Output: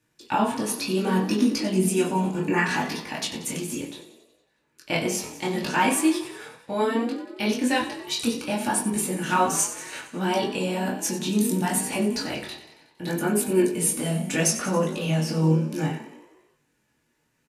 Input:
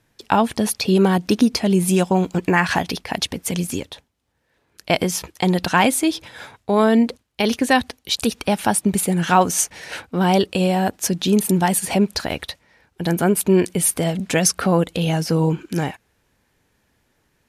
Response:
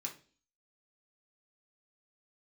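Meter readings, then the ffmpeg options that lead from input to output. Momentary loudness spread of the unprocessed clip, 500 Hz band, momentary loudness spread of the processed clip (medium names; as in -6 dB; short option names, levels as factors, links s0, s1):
9 LU, -6.0 dB, 9 LU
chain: -filter_complex "[0:a]asplit=8[s0][s1][s2][s3][s4][s5][s6][s7];[s1]adelay=92,afreqshift=35,volume=0.224[s8];[s2]adelay=184,afreqshift=70,volume=0.135[s9];[s3]adelay=276,afreqshift=105,volume=0.0804[s10];[s4]adelay=368,afreqshift=140,volume=0.0484[s11];[s5]adelay=460,afreqshift=175,volume=0.0292[s12];[s6]adelay=552,afreqshift=210,volume=0.0174[s13];[s7]adelay=644,afreqshift=245,volume=0.0105[s14];[s0][s8][s9][s10][s11][s12][s13][s14]amix=inputs=8:normalize=0,flanger=delay=19:depth=6.8:speed=0.67[s15];[1:a]atrim=start_sample=2205,asetrate=48510,aresample=44100[s16];[s15][s16]afir=irnorm=-1:irlink=0"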